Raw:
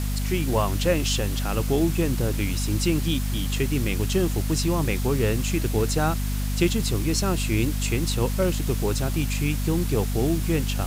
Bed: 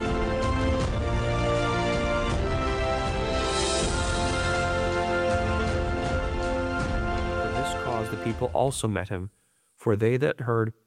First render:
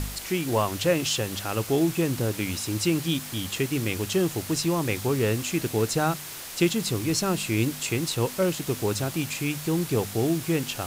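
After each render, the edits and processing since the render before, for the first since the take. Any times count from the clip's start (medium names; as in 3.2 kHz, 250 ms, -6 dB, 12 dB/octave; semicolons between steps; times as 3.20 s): de-hum 50 Hz, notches 5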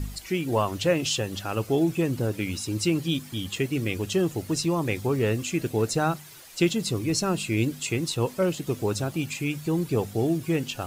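noise reduction 12 dB, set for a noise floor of -38 dBFS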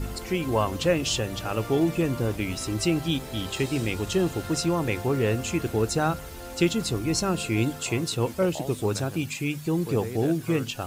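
add bed -12.5 dB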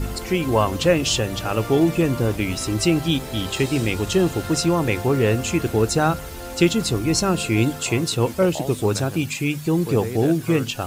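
trim +5.5 dB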